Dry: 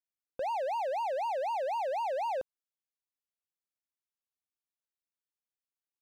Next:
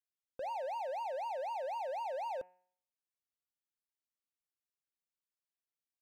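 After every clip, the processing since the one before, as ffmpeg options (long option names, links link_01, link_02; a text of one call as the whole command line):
ffmpeg -i in.wav -af "bandreject=frequency=181.4:width_type=h:width=4,bandreject=frequency=362.8:width_type=h:width=4,bandreject=frequency=544.2:width_type=h:width=4,bandreject=frequency=725.6:width_type=h:width=4,bandreject=frequency=907:width_type=h:width=4,bandreject=frequency=1088.4:width_type=h:width=4,bandreject=frequency=1269.8:width_type=h:width=4,bandreject=frequency=1451.2:width_type=h:width=4,bandreject=frequency=1632.6:width_type=h:width=4,bandreject=frequency=1814:width_type=h:width=4,bandreject=frequency=1995.4:width_type=h:width=4,bandreject=frequency=2176.8:width_type=h:width=4,bandreject=frequency=2358.2:width_type=h:width=4,bandreject=frequency=2539.6:width_type=h:width=4,bandreject=frequency=2721:width_type=h:width=4,bandreject=frequency=2902.4:width_type=h:width=4,volume=-6dB" out.wav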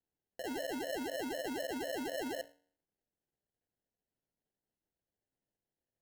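ffmpeg -i in.wav -af "bandreject=frequency=60:width_type=h:width=6,bandreject=frequency=120:width_type=h:width=6,bandreject=frequency=180:width_type=h:width=6,bandreject=frequency=240:width_type=h:width=6,bandreject=frequency=300:width_type=h:width=6,bandreject=frequency=360:width_type=h:width=6,bandreject=frequency=420:width_type=h:width=6,bandreject=frequency=480:width_type=h:width=6,bandreject=frequency=540:width_type=h:width=6,bandreject=frequency=600:width_type=h:width=6,acrusher=samples=37:mix=1:aa=0.000001" out.wav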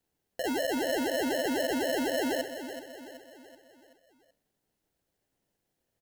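ffmpeg -i in.wav -filter_complex "[0:a]aeval=exprs='0.0282*(cos(1*acos(clip(val(0)/0.0282,-1,1)))-cos(1*PI/2))+0.00178*(cos(5*acos(clip(val(0)/0.0282,-1,1)))-cos(5*PI/2))':channel_layout=same,asplit=2[link_01][link_02];[link_02]aecho=0:1:379|758|1137|1516|1895:0.299|0.143|0.0688|0.033|0.0158[link_03];[link_01][link_03]amix=inputs=2:normalize=0,volume=8.5dB" out.wav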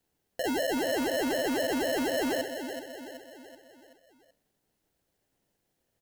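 ffmpeg -i in.wav -af "asoftclip=type=tanh:threshold=-27dB,volume=3dB" out.wav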